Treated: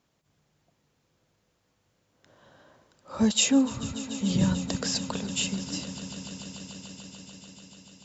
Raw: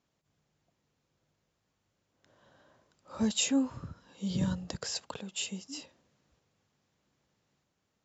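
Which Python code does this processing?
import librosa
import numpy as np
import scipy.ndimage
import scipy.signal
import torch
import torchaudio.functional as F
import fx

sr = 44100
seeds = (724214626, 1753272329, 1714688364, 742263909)

y = fx.echo_swell(x, sr, ms=146, loudest=5, wet_db=-18)
y = F.gain(torch.from_numpy(y), 6.5).numpy()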